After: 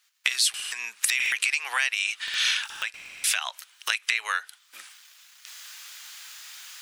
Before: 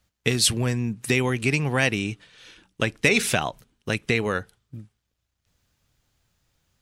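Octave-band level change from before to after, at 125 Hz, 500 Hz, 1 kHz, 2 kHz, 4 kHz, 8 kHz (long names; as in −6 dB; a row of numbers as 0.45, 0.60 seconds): below −40 dB, −25.5 dB, −3.5 dB, 0.0 dB, +2.5 dB, +1.5 dB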